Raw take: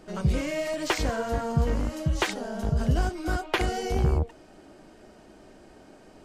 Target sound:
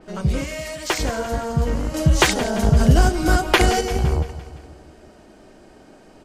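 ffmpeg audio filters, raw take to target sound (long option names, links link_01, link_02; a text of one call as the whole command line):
ffmpeg -i in.wav -filter_complex "[0:a]asettb=1/sr,asplit=3[link_01][link_02][link_03];[link_01]atrim=end=0.444[link_04];[link_02]atrim=start=0.44:end=0.9,asetpts=PTS-STARTPTS,afade=type=in:duration=0.004:curve=qsin,afade=type=out:start_time=0.456:duration=0.004:curve=qsin,highpass=frequency=1100:poles=1[link_05];[link_03]atrim=start=0.896[link_06];[link_04][link_05]acrossfade=duration=0.004:curve1=hsin:curve2=qsin[link_07];[link_07][link_06]acrossfade=duration=0.004:curve1=qsin:curve2=hsin,asettb=1/sr,asplit=3[link_08][link_09][link_10];[link_08]atrim=end=1.944[link_11];[link_09]atrim=start=1.94:end=3.81,asetpts=PTS-STARTPTS,afade=type=in:duration=0.004:curve=qsin,afade=type=out:start_time=1.866:duration=0.004:curve=qsin,acontrast=83[link_12];[link_10]atrim=start=3.806[link_13];[link_11][link_12]acrossfade=duration=0.004:curve1=hsin:curve2=qsin[link_14];[link_14][link_13]acrossfade=duration=0.004:curve1=qsin:curve2=hsin,aecho=1:1:171|342|513|684|855|1026:0.188|0.105|0.0591|0.0331|0.0185|0.0104,adynamicequalizer=threshold=0.00708:dfrequency=4800:dqfactor=0.7:tfrequency=4800:tqfactor=0.7:attack=5:release=100:ratio=0.375:range=2.5:mode=boostabove:tftype=highshelf,volume=3.5dB" out.wav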